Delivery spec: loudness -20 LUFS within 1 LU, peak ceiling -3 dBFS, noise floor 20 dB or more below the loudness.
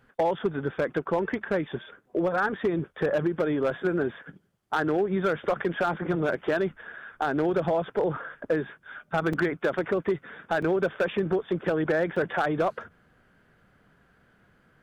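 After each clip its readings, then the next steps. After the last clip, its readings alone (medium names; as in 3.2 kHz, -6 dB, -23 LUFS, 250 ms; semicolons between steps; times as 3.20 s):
clipped samples 1.1%; clipping level -18.0 dBFS; dropouts 3; longest dropout 4.5 ms; loudness -27.5 LUFS; peak level -18.0 dBFS; loudness target -20.0 LUFS
-> clip repair -18 dBFS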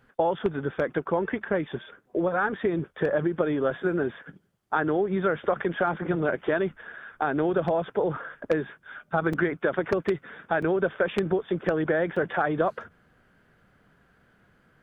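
clipped samples 0.0%; dropouts 3; longest dropout 4.5 ms
-> interpolate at 9.33/10.62/12.16 s, 4.5 ms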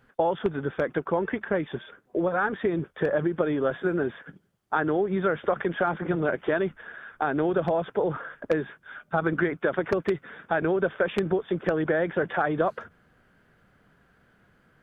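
dropouts 0; loudness -27.0 LUFS; peak level -9.0 dBFS; loudness target -20.0 LUFS
-> trim +7 dB; peak limiter -3 dBFS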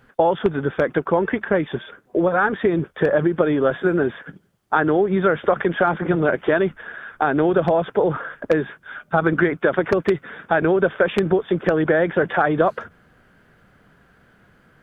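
loudness -20.0 LUFS; peak level -3.0 dBFS; noise floor -57 dBFS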